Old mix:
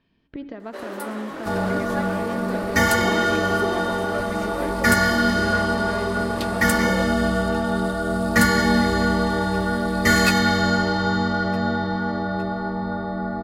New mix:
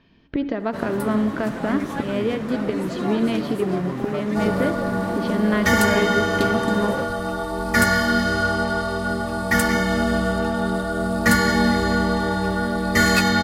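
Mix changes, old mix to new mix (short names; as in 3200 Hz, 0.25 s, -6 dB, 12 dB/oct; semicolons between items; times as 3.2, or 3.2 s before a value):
speech +10.5 dB; first sound: remove steep high-pass 320 Hz; second sound: entry +2.90 s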